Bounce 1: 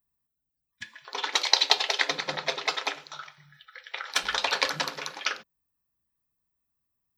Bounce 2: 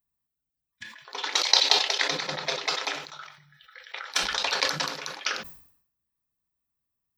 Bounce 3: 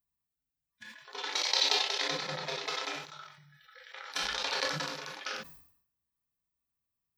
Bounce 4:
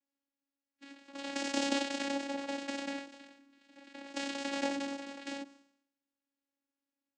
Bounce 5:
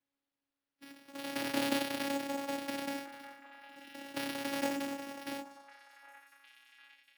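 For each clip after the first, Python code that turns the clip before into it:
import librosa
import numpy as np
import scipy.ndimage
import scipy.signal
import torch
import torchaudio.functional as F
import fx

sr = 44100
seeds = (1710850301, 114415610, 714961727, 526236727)

y1 = fx.dynamic_eq(x, sr, hz=5500.0, q=1.4, threshold_db=-41.0, ratio=4.0, max_db=5)
y1 = fx.sustainer(y1, sr, db_per_s=87.0)
y1 = F.gain(torch.from_numpy(y1), -2.5).numpy()
y2 = fx.hpss(y1, sr, part='percussive', gain_db=-15)
y3 = fx.lower_of_two(y2, sr, delay_ms=0.37)
y3 = fx.vocoder(y3, sr, bands=8, carrier='saw', carrier_hz=278.0)
y4 = np.repeat(y3[::6], 6)[:len(y3)]
y4 = fx.echo_stepped(y4, sr, ms=758, hz=970.0, octaves=0.7, feedback_pct=70, wet_db=-11)
y4 = fx.end_taper(y4, sr, db_per_s=160.0)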